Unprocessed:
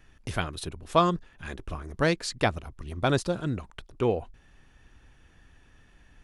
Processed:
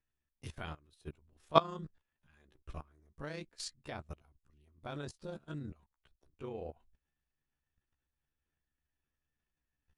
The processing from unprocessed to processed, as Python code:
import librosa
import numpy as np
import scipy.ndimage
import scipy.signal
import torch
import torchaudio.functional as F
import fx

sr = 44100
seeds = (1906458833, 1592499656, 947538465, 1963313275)

y = fx.level_steps(x, sr, step_db=17)
y = fx.stretch_grains(y, sr, factor=1.6, grain_ms=72.0)
y = fx.upward_expand(y, sr, threshold_db=-58.0, expansion=1.5)
y = y * librosa.db_to_amplitude(1.0)